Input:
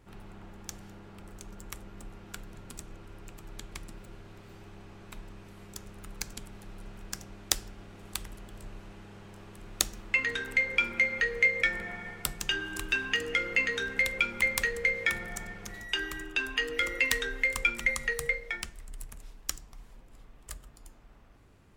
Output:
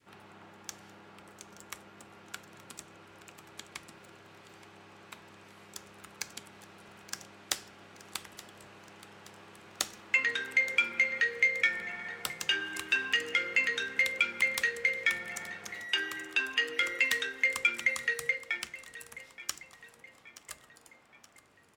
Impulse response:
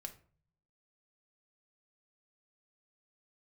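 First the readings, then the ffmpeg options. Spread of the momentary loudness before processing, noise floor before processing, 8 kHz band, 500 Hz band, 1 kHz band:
22 LU, -54 dBFS, -3.5 dB, -4.5 dB, -1.0 dB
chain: -filter_complex "[0:a]highpass=f=76:w=0.5412,highpass=f=76:w=1.3066,adynamicequalizer=threshold=0.00708:dfrequency=800:dqfactor=0.72:tfrequency=800:tqfactor=0.72:attack=5:release=100:ratio=0.375:range=2.5:mode=cutabove:tftype=bell,asplit=2[s0][s1];[s1]highpass=f=720:p=1,volume=5.01,asoftclip=type=tanh:threshold=0.668[s2];[s0][s2]amix=inputs=2:normalize=0,lowpass=f=6100:p=1,volume=0.501,aecho=1:1:874|1748|2622|3496:0.141|0.0692|0.0339|0.0166,asplit=2[s3][s4];[1:a]atrim=start_sample=2205[s5];[s4][s5]afir=irnorm=-1:irlink=0,volume=0.422[s6];[s3][s6]amix=inputs=2:normalize=0,volume=0.376"

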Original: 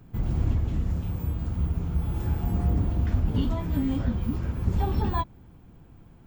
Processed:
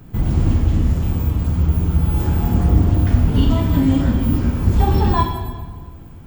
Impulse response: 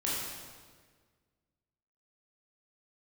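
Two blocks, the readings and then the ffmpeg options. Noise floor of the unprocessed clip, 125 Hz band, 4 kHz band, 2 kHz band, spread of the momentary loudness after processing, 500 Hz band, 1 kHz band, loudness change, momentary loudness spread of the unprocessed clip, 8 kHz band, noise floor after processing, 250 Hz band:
-51 dBFS, +10.5 dB, +12.0 dB, +10.5 dB, 5 LU, +10.5 dB, +11.0 dB, +10.5 dB, 4 LU, no reading, -37 dBFS, +11.0 dB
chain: -filter_complex "[0:a]asplit=2[s0][s1];[1:a]atrim=start_sample=2205,highshelf=f=4600:g=9[s2];[s1][s2]afir=irnorm=-1:irlink=0,volume=0.447[s3];[s0][s3]amix=inputs=2:normalize=0,volume=2"

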